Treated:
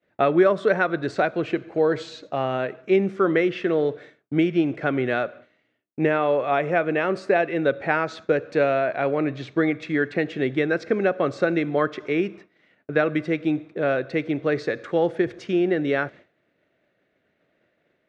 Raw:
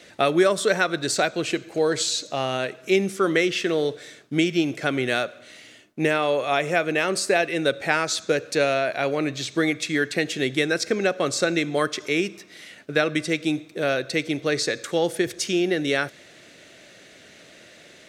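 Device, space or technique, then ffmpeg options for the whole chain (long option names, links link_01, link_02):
hearing-loss simulation: -af "lowpass=1700,agate=range=-33dB:threshold=-39dB:ratio=3:detection=peak,volume=1.5dB"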